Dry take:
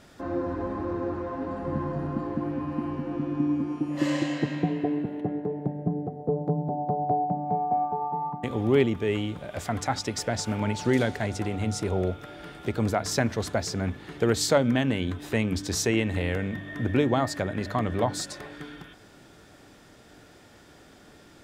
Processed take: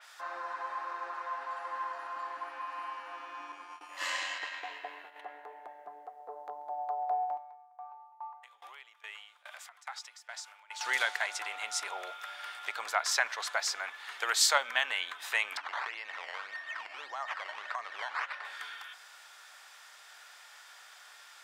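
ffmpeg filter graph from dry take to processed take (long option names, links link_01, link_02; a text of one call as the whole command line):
ffmpeg -i in.wav -filter_complex "[0:a]asettb=1/sr,asplit=3[link_01][link_02][link_03];[link_01]atrim=end=3.524[link_04];[link_02]atrim=start=3.52:end=5.16,asetpts=PTS-STARTPTS,afade=type=in:duration=0.004:curve=qsin,afade=type=out:start_time=1.636:duration=0.004:curve=qsin,tremolo=f=89:d=0.333,agate=range=-33dB:threshold=-32dB:ratio=3:release=100:detection=peak[link_05];[link_03]atrim=start=5.156[link_06];[link_04][link_05]acrossfade=duration=0.004:curve1=hsin:curve2=qsin[link_07];[link_07][link_06]acrossfade=duration=0.004:curve1=qsin:curve2=hsin,asettb=1/sr,asplit=3[link_08][link_09][link_10];[link_08]atrim=end=7.374[link_11];[link_09]atrim=start=7.37:end=10.81,asetpts=PTS-STARTPTS,afade=type=in:duration=0.004:curve=qsin,afade=type=out:start_time=3.436:duration=0.004:curve=qsin,highpass=550,acompressor=threshold=-39dB:ratio=3:attack=3.2:release=140:knee=1:detection=peak,aeval=exprs='val(0)*pow(10,-22*if(lt(mod(2.4*n/s,1),2*abs(2.4)/1000),1-mod(2.4*n/s,1)/(2*abs(2.4)/1000),(mod(2.4*n/s,1)-2*abs(2.4)/1000)/(1-2*abs(2.4)/1000))/20)':channel_layout=same[link_12];[link_10]atrim=start=10.806[link_13];[link_11][link_12]acrossfade=duration=0.004:curve1=hsin:curve2=qsin[link_14];[link_14][link_13]acrossfade=duration=0.004:curve1=qsin:curve2=hsin,asettb=1/sr,asplit=3[link_15][link_16][link_17];[link_15]atrim=end=12.594[link_18];[link_16]atrim=start=12.59:end=13.52,asetpts=PTS-STARTPTS,afade=type=in:duration=0.004:curve=qsin,afade=type=out:start_time=0.926:duration=0.004:curve=qsin,highpass=180,highshelf=frequency=7800:gain=-5.5[link_19];[link_17]atrim=start=13.516[link_20];[link_18][link_19]acrossfade=duration=0.004:curve1=hsin:curve2=qsin[link_21];[link_21][link_20]acrossfade=duration=0.004:curve1=qsin:curve2=hsin,asettb=1/sr,asplit=3[link_22][link_23][link_24];[link_22]atrim=end=15.574[link_25];[link_23]atrim=start=15.57:end=18.45,asetpts=PTS-STARTPTS,afade=type=in:duration=0.004:curve=qsin,afade=type=out:start_time=2.876:duration=0.004:curve=qsin,acompressor=threshold=-27dB:ratio=12:attack=3.2:release=140:knee=1:detection=peak,acrusher=samples=12:mix=1:aa=0.000001:lfo=1:lforange=12:lforate=1.7,highpass=100,lowpass=2500[link_26];[link_24]atrim=start=18.446[link_27];[link_25][link_26]acrossfade=duration=0.004:curve1=hsin:curve2=qsin[link_28];[link_28][link_27]acrossfade=duration=0.004:curve1=qsin:curve2=hsin,highpass=frequency=950:width=0.5412,highpass=frequency=950:width=1.3066,adynamicequalizer=threshold=0.00447:dfrequency=4100:dqfactor=0.7:tfrequency=4100:tqfactor=0.7:attack=5:release=100:ratio=0.375:range=2:mode=cutabove:tftype=highshelf,volume=4dB" out.wav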